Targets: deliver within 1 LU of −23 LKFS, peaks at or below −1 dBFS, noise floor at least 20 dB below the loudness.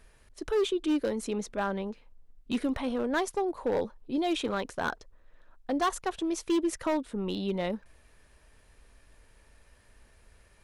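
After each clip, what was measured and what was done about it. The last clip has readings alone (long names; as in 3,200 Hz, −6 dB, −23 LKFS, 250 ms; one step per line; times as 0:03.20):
share of clipped samples 1.4%; peaks flattened at −22.0 dBFS; integrated loudness −31.0 LKFS; sample peak −22.0 dBFS; target loudness −23.0 LKFS
→ clipped peaks rebuilt −22 dBFS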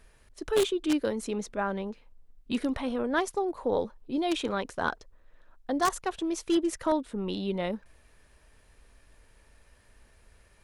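share of clipped samples 0.0%; integrated loudness −30.5 LKFS; sample peak −13.0 dBFS; target loudness −23.0 LKFS
→ level +7.5 dB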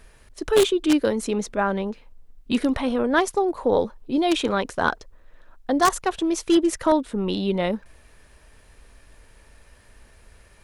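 integrated loudness −23.0 LKFS; sample peak −5.5 dBFS; background noise floor −54 dBFS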